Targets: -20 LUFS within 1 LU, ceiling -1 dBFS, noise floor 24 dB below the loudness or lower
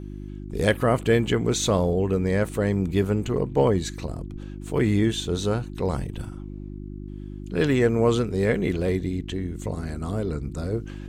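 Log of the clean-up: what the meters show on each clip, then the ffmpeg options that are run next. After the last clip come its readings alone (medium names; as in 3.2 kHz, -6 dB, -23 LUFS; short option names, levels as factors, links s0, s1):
hum 50 Hz; highest harmonic 350 Hz; hum level -33 dBFS; loudness -24.5 LUFS; peak level -8.0 dBFS; loudness target -20.0 LUFS
-> -af "bandreject=f=50:t=h:w=4,bandreject=f=100:t=h:w=4,bandreject=f=150:t=h:w=4,bandreject=f=200:t=h:w=4,bandreject=f=250:t=h:w=4,bandreject=f=300:t=h:w=4,bandreject=f=350:t=h:w=4"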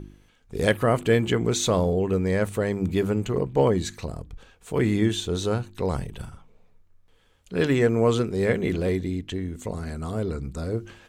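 hum not found; loudness -25.0 LUFS; peak level -7.5 dBFS; loudness target -20.0 LUFS
-> -af "volume=1.78"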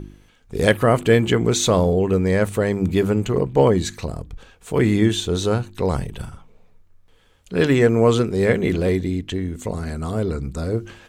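loudness -20.0 LUFS; peak level -2.5 dBFS; noise floor -54 dBFS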